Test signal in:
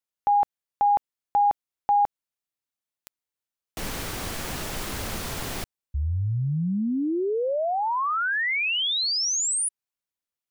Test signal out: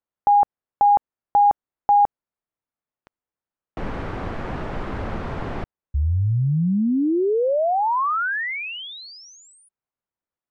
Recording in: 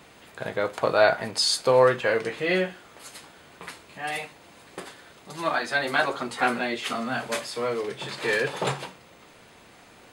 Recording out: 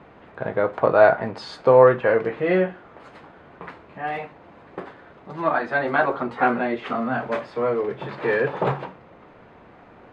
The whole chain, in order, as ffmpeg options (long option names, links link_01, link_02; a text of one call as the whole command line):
ffmpeg -i in.wav -af "lowpass=1400,volume=5.5dB" out.wav